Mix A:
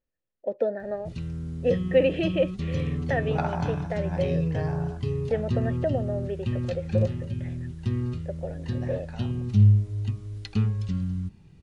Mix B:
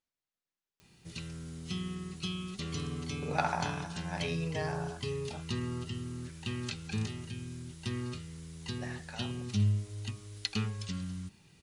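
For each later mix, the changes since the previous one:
first voice: muted; master: add tilt +3.5 dB/oct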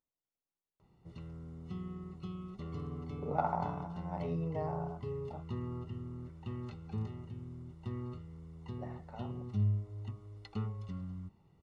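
background: add bell 220 Hz -5 dB 2.2 oct; master: add polynomial smoothing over 65 samples

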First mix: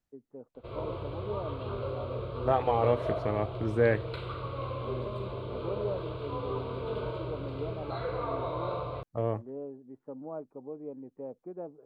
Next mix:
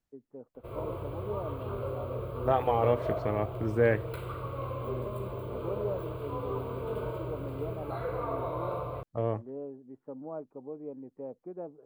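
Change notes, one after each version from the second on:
background: remove synth low-pass 4100 Hz, resonance Q 3.5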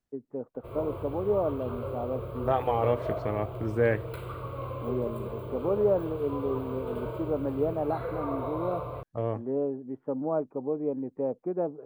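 first voice +11.0 dB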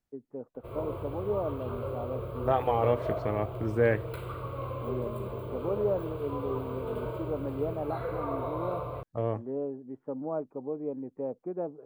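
first voice -4.5 dB

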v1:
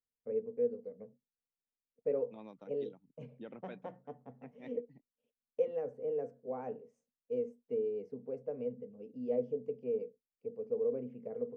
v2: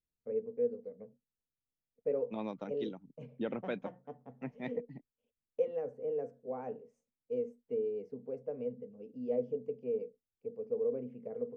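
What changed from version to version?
second voice +11.5 dB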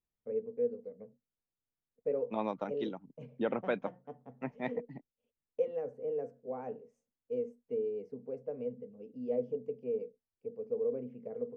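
second voice: add bell 950 Hz +8.5 dB 2.2 oct

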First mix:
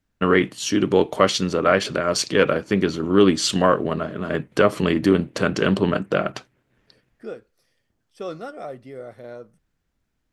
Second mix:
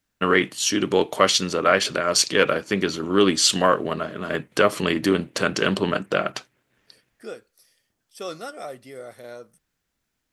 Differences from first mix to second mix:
second voice: add high shelf 5800 Hz +10.5 dB; master: add tilt +2 dB/oct

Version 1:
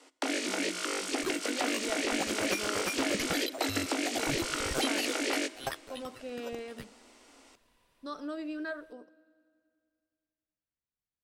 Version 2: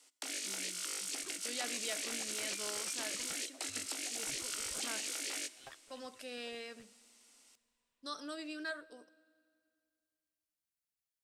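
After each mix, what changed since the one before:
speech +11.5 dB; second sound: add air absorption 330 m; master: add pre-emphasis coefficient 0.9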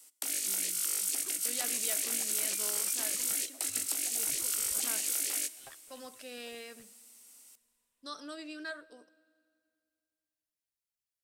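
first sound: remove LPF 5500 Hz 12 dB/oct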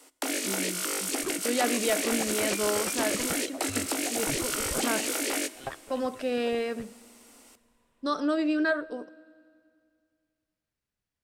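second sound: send +7.5 dB; master: remove pre-emphasis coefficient 0.9

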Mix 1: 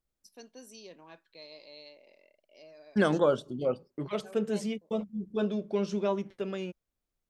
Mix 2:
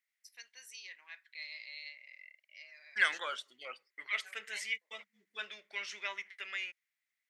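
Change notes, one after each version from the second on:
master: add resonant high-pass 2000 Hz, resonance Q 8.2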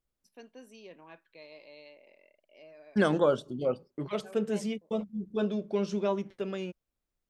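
first voice: add resonant high shelf 3500 Hz -9 dB, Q 1.5; master: remove resonant high-pass 2000 Hz, resonance Q 8.2

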